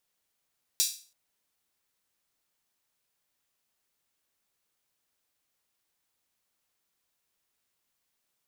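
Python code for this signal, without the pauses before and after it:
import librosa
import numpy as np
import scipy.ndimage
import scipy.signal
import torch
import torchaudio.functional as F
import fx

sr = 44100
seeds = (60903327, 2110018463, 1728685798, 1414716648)

y = fx.drum_hat_open(sr, length_s=0.33, from_hz=4600.0, decay_s=0.39)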